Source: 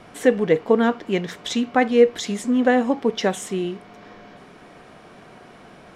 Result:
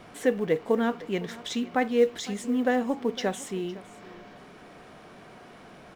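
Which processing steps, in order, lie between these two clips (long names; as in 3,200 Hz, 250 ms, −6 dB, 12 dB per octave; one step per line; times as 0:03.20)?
mu-law and A-law mismatch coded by mu
on a send: single-tap delay 508 ms −19 dB
on the sum: level −7.5 dB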